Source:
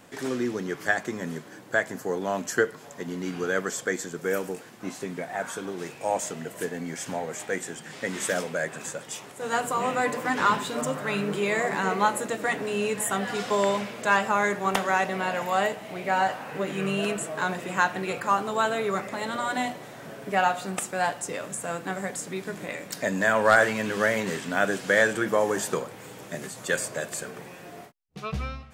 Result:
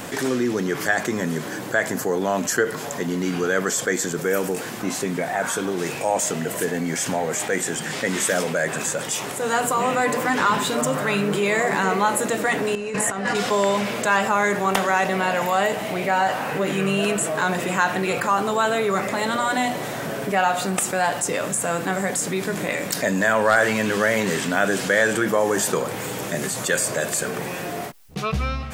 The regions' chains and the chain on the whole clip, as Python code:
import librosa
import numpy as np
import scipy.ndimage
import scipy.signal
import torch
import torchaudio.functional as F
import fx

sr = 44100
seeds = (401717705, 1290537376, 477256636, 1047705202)

y = fx.chain(x, sr, fx.bandpass_edges(low_hz=130.0, high_hz=6900.0),
    fx.peak_eq(hz=3400.0, db=-9.5, octaves=0.32),
    fx.over_compress(threshold_db=-33.0, ratio=-0.5), at=(12.75, 13.35))
y = fx.high_shelf(y, sr, hz=8700.0, db=4.5)
y = fx.env_flatten(y, sr, amount_pct=50)